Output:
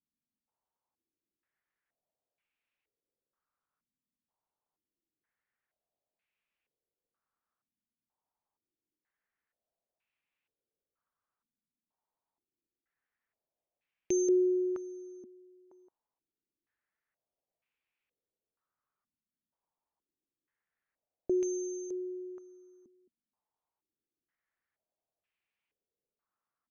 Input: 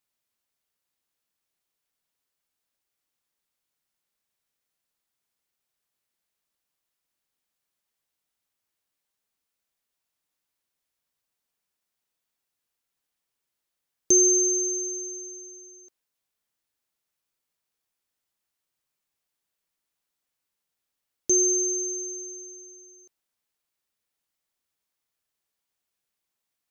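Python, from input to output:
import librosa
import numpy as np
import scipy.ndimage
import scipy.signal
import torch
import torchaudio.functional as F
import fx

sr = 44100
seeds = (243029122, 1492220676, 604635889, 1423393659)

y = fx.filter_held_lowpass(x, sr, hz=2.1, low_hz=240.0, high_hz=2500.0)
y = y * librosa.db_to_amplitude(-5.5)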